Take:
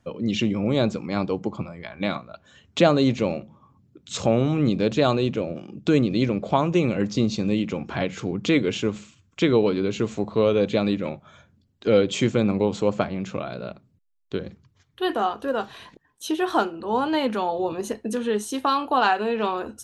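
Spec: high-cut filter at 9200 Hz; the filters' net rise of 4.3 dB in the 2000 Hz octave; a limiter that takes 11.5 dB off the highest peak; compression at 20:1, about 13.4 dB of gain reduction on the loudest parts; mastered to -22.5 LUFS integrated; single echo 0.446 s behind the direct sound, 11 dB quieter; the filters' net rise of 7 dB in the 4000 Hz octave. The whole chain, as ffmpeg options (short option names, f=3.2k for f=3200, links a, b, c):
-af "lowpass=9.2k,equalizer=f=2k:t=o:g=3.5,equalizer=f=4k:t=o:g=7.5,acompressor=threshold=-25dB:ratio=20,alimiter=limit=-23dB:level=0:latency=1,aecho=1:1:446:0.282,volume=11.5dB"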